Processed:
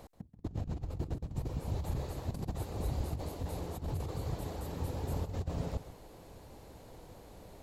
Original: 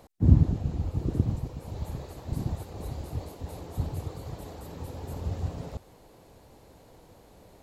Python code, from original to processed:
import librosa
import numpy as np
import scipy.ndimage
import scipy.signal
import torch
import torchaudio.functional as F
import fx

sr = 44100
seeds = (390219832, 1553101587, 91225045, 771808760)

y = fx.over_compress(x, sr, threshold_db=-34.0, ratio=-0.5)
y = fx.low_shelf(y, sr, hz=65.0, db=5.0)
y = y + 10.0 ** (-13.0 / 20.0) * np.pad(y, (int(133 * sr / 1000.0), 0))[:len(y)]
y = y * librosa.db_to_amplitude(-4.5)